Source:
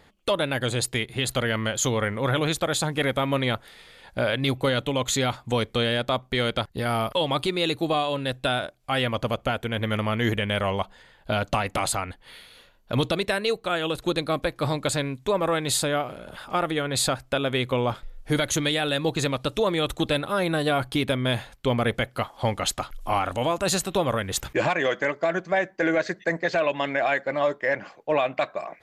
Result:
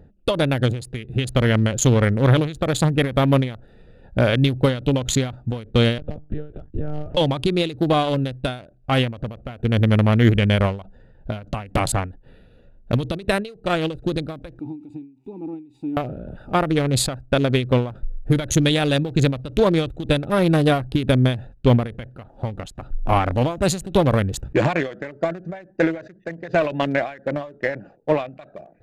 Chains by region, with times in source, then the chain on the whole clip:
5.98–7.17 compressor, threshold -30 dBFS + monotone LPC vocoder at 8 kHz 150 Hz
14.59–15.97 switching spikes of -24.5 dBFS + vowel filter u + high shelf 4500 Hz +11.5 dB
whole clip: Wiener smoothing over 41 samples; low shelf 250 Hz +9 dB; ending taper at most 130 dB/s; gain +5.5 dB

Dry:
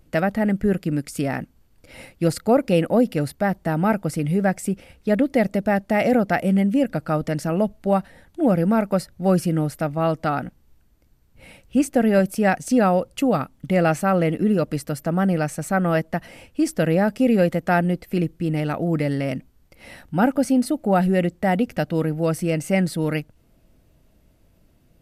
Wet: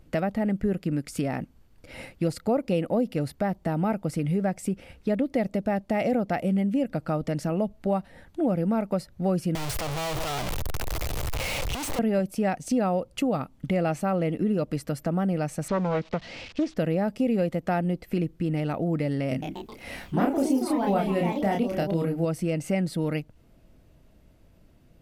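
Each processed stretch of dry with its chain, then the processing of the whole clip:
9.55–11.99 infinite clipping + bell 230 Hz -12 dB 1.2 oct + three-band squash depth 70%
15.68–16.77 switching spikes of -25 dBFS + LPF 4700 Hz 24 dB/oct + Doppler distortion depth 0.38 ms
19.29–22.25 high shelf 6300 Hz +4.5 dB + echoes that change speed 0.132 s, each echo +3 st, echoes 3, each echo -6 dB + doubler 30 ms -3 dB
whole clip: dynamic EQ 1600 Hz, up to -6 dB, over -41 dBFS, Q 2.3; compressor 2:1, threshold -28 dBFS; high shelf 6600 Hz -7 dB; gain +1 dB

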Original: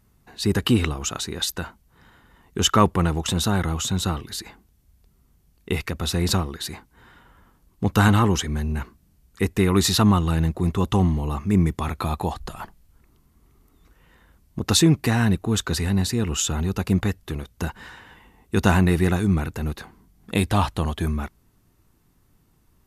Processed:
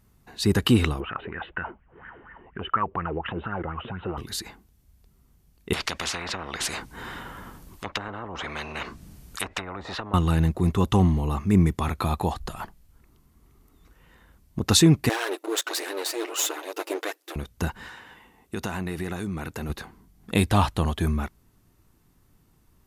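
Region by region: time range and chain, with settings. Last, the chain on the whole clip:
1–4.18 steep low-pass 3000 Hz 72 dB/oct + compressor 3:1, threshold -36 dBFS + LFO bell 4.2 Hz 360–1800 Hz +18 dB
5.73–10.14 treble ducked by the level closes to 370 Hz, closed at -14.5 dBFS + spectral compressor 10:1
15.09–17.36 minimum comb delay 8.8 ms + brick-wall FIR high-pass 290 Hz + phaser 1.4 Hz, delay 3.6 ms, feedback 30%
17.88–19.7 low shelf 120 Hz -11.5 dB + compressor 5:1, threshold -27 dBFS
whole clip: dry

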